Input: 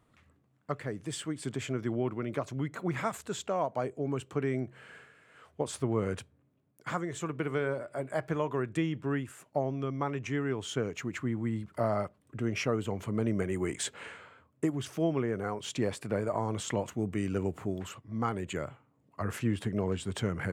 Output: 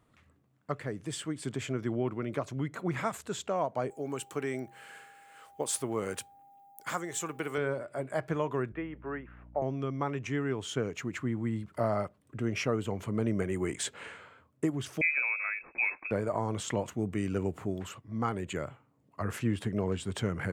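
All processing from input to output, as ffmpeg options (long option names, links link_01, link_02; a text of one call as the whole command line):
ffmpeg -i in.wav -filter_complex "[0:a]asettb=1/sr,asplit=3[link_01][link_02][link_03];[link_01]atrim=end=3.904[link_04];[link_02]atrim=start=3.9:end=7.58,asetpts=PTS-STARTPTS,afade=type=in:duration=0.004:curve=qsin,afade=type=out:start_time=3.676:duration=0.004:curve=qsin,aemphasis=mode=production:type=bsi,aeval=exprs='val(0)+0.00178*sin(2*PI*800*n/s)':channel_layout=same[link_05];[link_03]atrim=start=7.576[link_06];[link_04][link_05]acrossfade=duration=0.004:curve1=hsin:curve2=qsin[link_07];[link_07][link_06]acrossfade=duration=0.004:curve1=qsin:curve2=hsin,asettb=1/sr,asplit=3[link_08][link_09][link_10];[link_08]atrim=end=8.724[link_11];[link_09]atrim=start=8.72:end=9.62,asetpts=PTS-STARTPTS,afade=type=in:duration=0.004:curve=qsin,afade=type=out:start_time=0.896:duration=0.004:curve=qsin,lowpass=frequency=3000:width=0.5412,lowpass=frequency=3000:width=1.3066,acrossover=split=380 2300:gain=0.178 1 0.0891[link_12][link_13][link_14];[link_12][link_13][link_14]amix=inputs=3:normalize=0,aeval=exprs='val(0)+0.00282*(sin(2*PI*60*n/s)+sin(2*PI*2*60*n/s)/2+sin(2*PI*3*60*n/s)/3+sin(2*PI*4*60*n/s)/4+sin(2*PI*5*60*n/s)/5)':channel_layout=same[link_15];[link_10]atrim=start=9.616[link_16];[link_11][link_15]acrossfade=duration=0.004:curve1=hsin:curve2=qsin[link_17];[link_17][link_16]acrossfade=duration=0.004:curve1=qsin:curve2=hsin,asettb=1/sr,asplit=3[link_18][link_19][link_20];[link_18]atrim=end=15.014[link_21];[link_19]atrim=start=15.01:end=16.11,asetpts=PTS-STARTPTS,afade=type=in:duration=0.004:curve=qsin,afade=type=out:start_time=1.096:duration=0.004:curve=qsin,lowpass=frequency=2300:width_type=q:width=0.5098,lowpass=frequency=2300:width_type=q:width=0.6013,lowpass=frequency=2300:width_type=q:width=0.9,lowpass=frequency=2300:width_type=q:width=2.563,afreqshift=-2700,equalizer=frequency=110:width_type=o:width=0.78:gain=-12.5[link_22];[link_20]atrim=start=16.106[link_23];[link_21][link_22]acrossfade=duration=0.004:curve1=hsin:curve2=qsin[link_24];[link_24][link_23]acrossfade=duration=0.004:curve1=qsin:curve2=hsin" out.wav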